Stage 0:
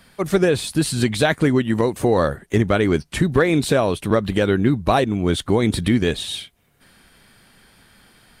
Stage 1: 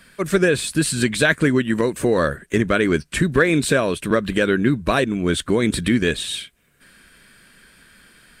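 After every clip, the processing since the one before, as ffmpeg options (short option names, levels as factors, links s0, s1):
-af "equalizer=f=100:t=o:w=0.33:g=-11,equalizer=f=800:t=o:w=0.33:g=-11,equalizer=f=1600:t=o:w=0.33:g=7,equalizer=f=2500:t=o:w=0.33:g=4,equalizer=f=8000:t=o:w=0.33:g=6"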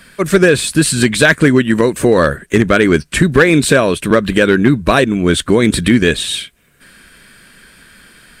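-af "asoftclip=type=hard:threshold=0.355,volume=2.37"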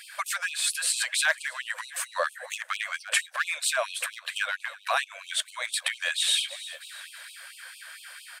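-filter_complex "[0:a]asplit=4[s0][s1][s2][s3];[s1]adelay=324,afreqshift=39,volume=0.1[s4];[s2]adelay=648,afreqshift=78,volume=0.0462[s5];[s3]adelay=972,afreqshift=117,volume=0.0211[s6];[s0][s4][s5][s6]amix=inputs=4:normalize=0,acompressor=threshold=0.1:ratio=5,afftfilt=real='re*gte(b*sr/1024,500*pow(2500/500,0.5+0.5*sin(2*PI*4.4*pts/sr)))':imag='im*gte(b*sr/1024,500*pow(2500/500,0.5+0.5*sin(2*PI*4.4*pts/sr)))':win_size=1024:overlap=0.75"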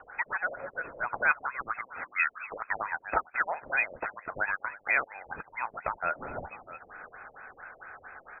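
-af "lowpass=f=2600:t=q:w=0.5098,lowpass=f=2600:t=q:w=0.6013,lowpass=f=2600:t=q:w=0.9,lowpass=f=2600:t=q:w=2.563,afreqshift=-3100"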